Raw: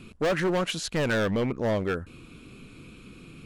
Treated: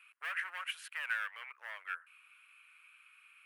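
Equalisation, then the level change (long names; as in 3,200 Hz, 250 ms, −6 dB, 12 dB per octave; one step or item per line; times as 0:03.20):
inverse Chebyshev high-pass filter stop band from 250 Hz, stop band 80 dB
high-shelf EQ 2,200 Hz −10 dB
flat-topped bell 5,100 Hz −14.5 dB 1.3 octaves
+1.0 dB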